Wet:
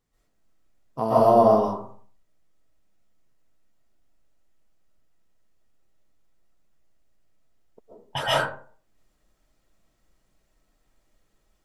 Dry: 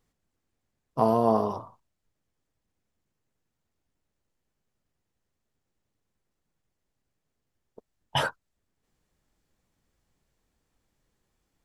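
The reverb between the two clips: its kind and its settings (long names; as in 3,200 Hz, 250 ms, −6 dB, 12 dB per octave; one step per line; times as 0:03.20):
comb and all-pass reverb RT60 0.47 s, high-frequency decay 0.5×, pre-delay 95 ms, DRR −9.5 dB
level −4 dB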